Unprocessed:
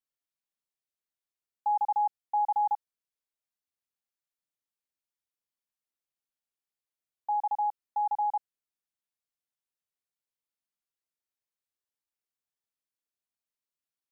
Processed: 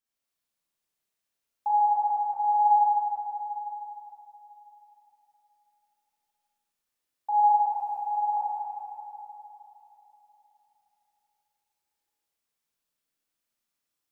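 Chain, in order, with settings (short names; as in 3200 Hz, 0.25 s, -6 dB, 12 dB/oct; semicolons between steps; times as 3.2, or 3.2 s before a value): 1.71–2.62 bell 800 Hz -7 dB 0.34 oct; 7.52–8.37 negative-ratio compressor -35 dBFS, ratio -0.5; Schroeder reverb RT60 3.5 s, combs from 27 ms, DRR -8 dB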